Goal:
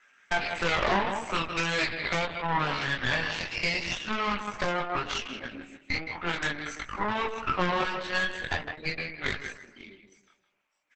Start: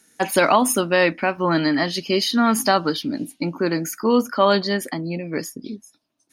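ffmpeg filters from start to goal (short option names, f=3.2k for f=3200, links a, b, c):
-filter_complex "[0:a]acrossover=split=990[a][b];[b]alimiter=limit=-18dB:level=0:latency=1:release=48[c];[a][c]amix=inputs=2:normalize=0,acontrast=41,asetrate=25442,aresample=44100,highpass=520,lowpass=7.4k,highshelf=f=2.1k:t=q:w=3:g=-11.5,asplit=2[d][e];[e]adelay=157,lowpass=f=3.7k:p=1,volume=-9dB,asplit=2[f][g];[g]adelay=157,lowpass=f=3.7k:p=1,volume=0.31,asplit=2[h][i];[i]adelay=157,lowpass=f=3.7k:p=1,volume=0.31,asplit=2[j][k];[k]adelay=157,lowpass=f=3.7k:p=1,volume=0.31[l];[d][f][h][j][l]amix=inputs=5:normalize=0,asetrate=70004,aresample=44100,atempo=0.629961,acompressor=threshold=-26dB:ratio=2,aeval=exprs='0.266*(cos(1*acos(clip(val(0)/0.266,-1,1)))-cos(1*PI/2))+0.106*(cos(4*acos(clip(val(0)/0.266,-1,1)))-cos(4*PI/2))':c=same,flanger=delay=19:depth=6.5:speed=0.43" -ar 48000 -c:a libopus -b:a 10k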